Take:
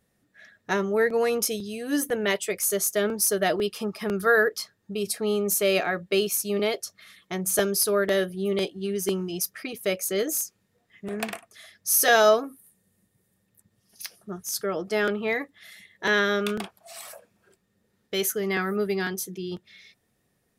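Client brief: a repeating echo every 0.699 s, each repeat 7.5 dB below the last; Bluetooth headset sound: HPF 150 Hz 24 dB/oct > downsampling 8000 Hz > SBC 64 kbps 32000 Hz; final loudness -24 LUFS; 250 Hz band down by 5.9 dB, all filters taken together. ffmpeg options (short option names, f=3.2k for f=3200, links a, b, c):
-af "highpass=f=150:w=0.5412,highpass=f=150:w=1.3066,equalizer=f=250:t=o:g=-8.5,aecho=1:1:699|1398|2097|2796|3495:0.422|0.177|0.0744|0.0312|0.0131,aresample=8000,aresample=44100,volume=4dB" -ar 32000 -c:a sbc -b:a 64k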